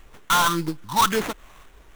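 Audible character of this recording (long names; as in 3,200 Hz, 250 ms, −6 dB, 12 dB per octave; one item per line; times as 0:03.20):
a quantiser's noise floor 10 bits, dither triangular
phaser sweep stages 4, 1.8 Hz, lowest notch 380–1,500 Hz
aliases and images of a low sample rate 4,800 Hz, jitter 20%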